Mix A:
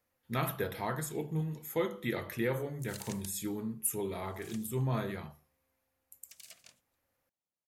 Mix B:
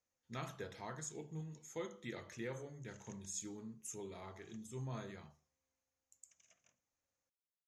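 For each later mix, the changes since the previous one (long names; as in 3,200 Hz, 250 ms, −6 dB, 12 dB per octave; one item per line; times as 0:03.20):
background: add moving average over 10 samples
master: add transistor ladder low-pass 6,900 Hz, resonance 75%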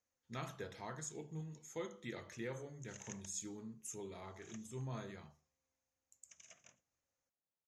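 background +10.0 dB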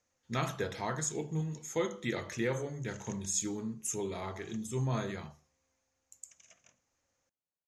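speech +11.5 dB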